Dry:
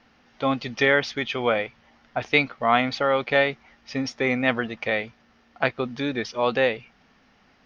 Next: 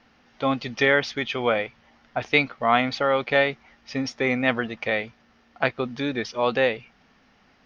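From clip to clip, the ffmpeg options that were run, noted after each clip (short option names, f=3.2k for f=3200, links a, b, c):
-af anull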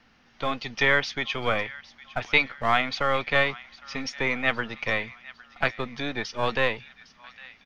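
-filter_complex "[0:a]acrossover=split=250|1000[a][b][c];[a]acompressor=threshold=-41dB:ratio=6[d];[b]aeval=exprs='max(val(0),0)':c=same[e];[c]aecho=1:1:808|1616|2424|3232:0.126|0.0655|0.034|0.0177[f];[d][e][f]amix=inputs=3:normalize=0"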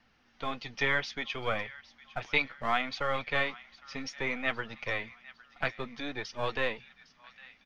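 -af "flanger=delay=1:depth=6.2:regen=-48:speed=0.63:shape=triangular,volume=-3dB"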